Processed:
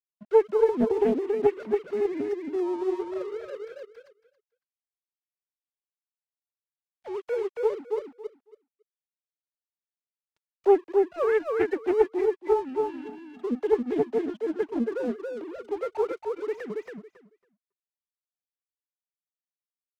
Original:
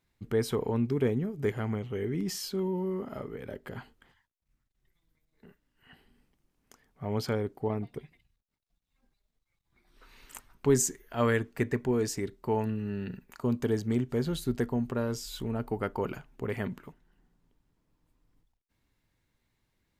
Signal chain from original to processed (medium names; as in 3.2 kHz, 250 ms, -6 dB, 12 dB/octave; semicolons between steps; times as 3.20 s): formants replaced by sine waves; peaking EQ 490 Hz +6.5 dB 0.64 oct; crossover distortion -46 dBFS; feedback delay 277 ms, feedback 16%, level -3.5 dB; loudspeaker Doppler distortion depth 0.43 ms